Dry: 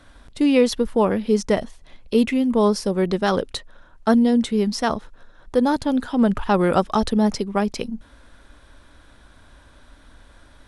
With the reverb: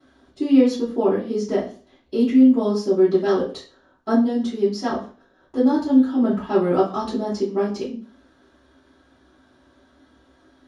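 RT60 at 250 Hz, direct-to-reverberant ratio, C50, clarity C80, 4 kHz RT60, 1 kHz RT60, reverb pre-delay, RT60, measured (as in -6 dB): 0.40 s, -12.0 dB, 8.0 dB, 13.0 dB, 0.35 s, 0.40 s, 3 ms, 0.40 s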